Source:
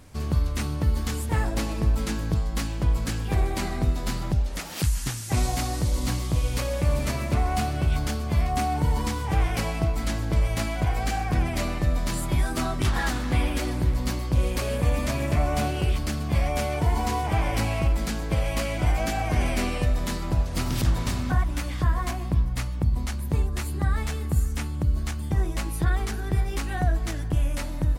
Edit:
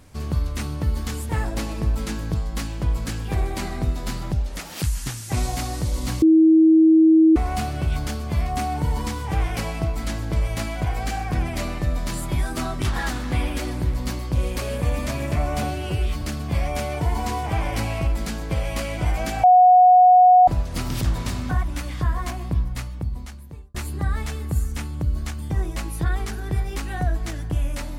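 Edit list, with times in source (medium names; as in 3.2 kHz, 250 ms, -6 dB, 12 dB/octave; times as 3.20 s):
6.22–7.36 s: bleep 320 Hz -10 dBFS
15.63–16.02 s: stretch 1.5×
19.24–20.28 s: bleep 730 Hz -8.5 dBFS
22.43–23.55 s: fade out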